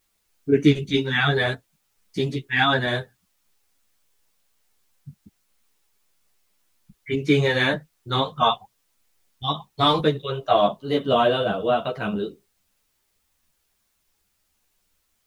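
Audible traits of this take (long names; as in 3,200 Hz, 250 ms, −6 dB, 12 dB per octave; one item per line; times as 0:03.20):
tremolo saw up 1.4 Hz, depth 35%
a quantiser's noise floor 12 bits, dither triangular
a shimmering, thickened sound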